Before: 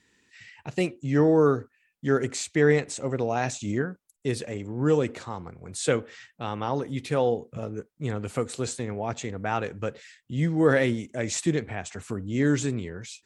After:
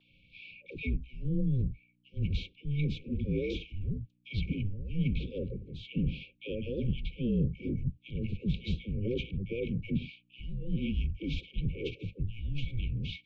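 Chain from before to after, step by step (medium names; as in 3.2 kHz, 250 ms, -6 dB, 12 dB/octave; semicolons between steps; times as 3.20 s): peaking EQ 1.7 kHz +12.5 dB 0.36 oct; reverse; compression 16:1, threshold -31 dBFS, peak gain reduction 19 dB; reverse; brick-wall FIR band-stop 860–2500 Hz; phase dispersion lows, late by 114 ms, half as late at 720 Hz; mains buzz 60 Hz, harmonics 10, -67 dBFS -6 dB/octave; mistuned SSB -300 Hz 230–3600 Hz; trim +7 dB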